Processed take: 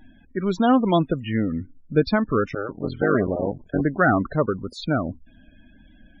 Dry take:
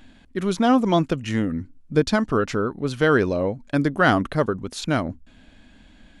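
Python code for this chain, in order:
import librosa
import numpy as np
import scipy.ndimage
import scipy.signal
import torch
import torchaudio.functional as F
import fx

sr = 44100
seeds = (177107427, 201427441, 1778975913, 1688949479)

y = fx.cycle_switch(x, sr, every=3, mode='muted', at=(2.46, 3.81))
y = fx.spec_topn(y, sr, count=32)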